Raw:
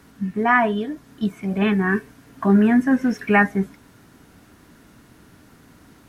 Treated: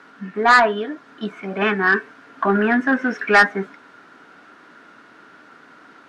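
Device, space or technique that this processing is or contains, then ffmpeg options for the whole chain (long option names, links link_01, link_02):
intercom: -af "highpass=380,lowpass=3700,equalizer=frequency=1400:width_type=o:width=0.45:gain=9,asoftclip=type=tanh:threshold=-10.5dB,volume=5dB"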